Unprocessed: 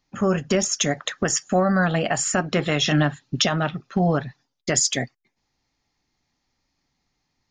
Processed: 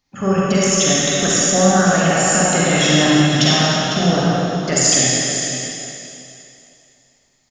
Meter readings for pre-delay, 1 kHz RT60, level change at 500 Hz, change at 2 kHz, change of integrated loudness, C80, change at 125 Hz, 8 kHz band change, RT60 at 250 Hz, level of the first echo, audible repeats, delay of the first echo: 36 ms, 2.9 s, +6.5 dB, +7.5 dB, +7.5 dB, -3.5 dB, +6.5 dB, +10.0 dB, 2.6 s, -9.5 dB, 1, 502 ms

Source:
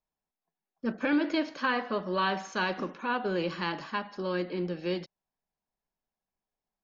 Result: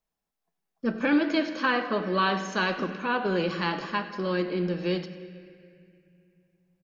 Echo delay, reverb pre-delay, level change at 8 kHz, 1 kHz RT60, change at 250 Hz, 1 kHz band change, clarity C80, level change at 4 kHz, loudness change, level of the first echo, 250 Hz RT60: 98 ms, 4 ms, no reading, 2.1 s, +4.0 dB, +3.0 dB, 11.0 dB, +4.0 dB, +4.0 dB, -18.0 dB, 3.5 s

